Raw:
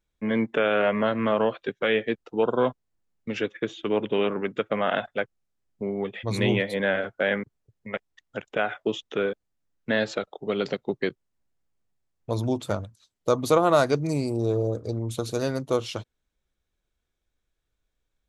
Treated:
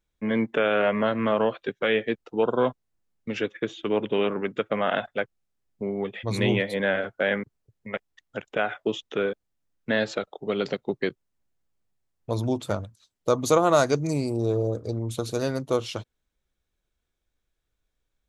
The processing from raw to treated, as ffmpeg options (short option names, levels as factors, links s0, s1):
-filter_complex "[0:a]asettb=1/sr,asplit=3[s0][s1][s2];[s0]atrim=end=13.414[s3];[s1]atrim=start=13.41:end=14.11,asetpts=PTS-STARTPTS,afade=t=in:d=0.004:c=qsin,afade=t=out:st=0.696:d=0.004:c=qsin,equalizer=f=6600:w=3.6:g=9[s4];[s2]atrim=start=14.106[s5];[s3][s4]acrossfade=d=0.004:c1=hsin:c2=qsin[s6];[s6][s5]acrossfade=d=0.004:c1=qsin:c2=hsin"